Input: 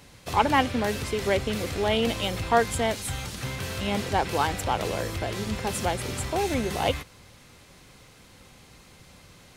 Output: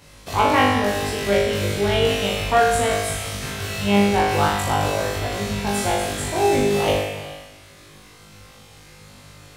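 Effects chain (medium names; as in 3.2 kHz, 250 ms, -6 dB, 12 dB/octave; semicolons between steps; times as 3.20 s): on a send: flutter echo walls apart 3.4 m, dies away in 0.91 s; on the sum: gated-style reverb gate 460 ms flat, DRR 11 dB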